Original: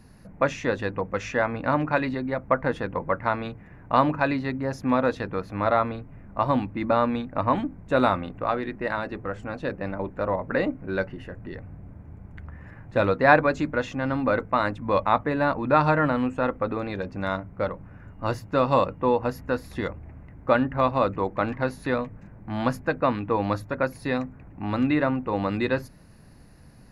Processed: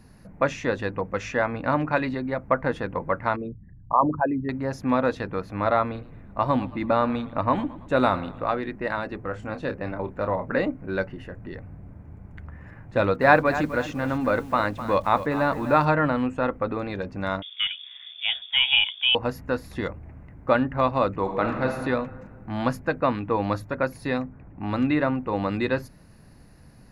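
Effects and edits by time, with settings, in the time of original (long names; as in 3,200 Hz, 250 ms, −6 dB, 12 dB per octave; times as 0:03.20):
0:03.36–0:04.49: spectral envelope exaggerated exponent 3
0:05.83–0:08.55: feedback echo with a swinging delay time 111 ms, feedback 50%, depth 98 cents, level −18 dB
0:09.28–0:10.59: double-tracking delay 28 ms −9 dB
0:12.87–0:15.85: feedback echo at a low word length 255 ms, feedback 35%, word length 7 bits, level −12 dB
0:17.42–0:19.15: voice inversion scrambler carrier 3,500 Hz
0:21.19–0:21.69: thrown reverb, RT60 1.7 s, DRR 3 dB
0:24.19–0:24.61: high-shelf EQ 2,600 Hz → 4,100 Hz −11.5 dB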